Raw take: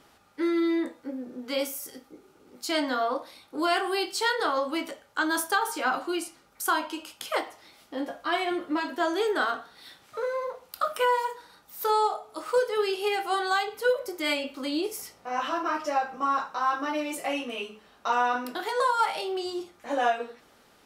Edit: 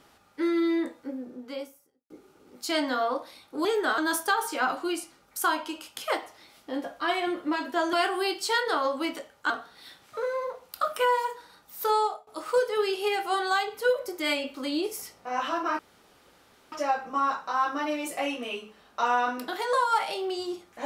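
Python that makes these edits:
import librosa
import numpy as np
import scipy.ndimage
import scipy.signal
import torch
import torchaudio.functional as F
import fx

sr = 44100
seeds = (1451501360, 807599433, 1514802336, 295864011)

y = fx.studio_fade_out(x, sr, start_s=1.01, length_s=1.09)
y = fx.edit(y, sr, fx.swap(start_s=3.65, length_s=1.57, other_s=9.17, other_length_s=0.33),
    fx.fade_out_to(start_s=11.89, length_s=0.38, curve='qsin', floor_db=-21.5),
    fx.insert_room_tone(at_s=15.79, length_s=0.93), tone=tone)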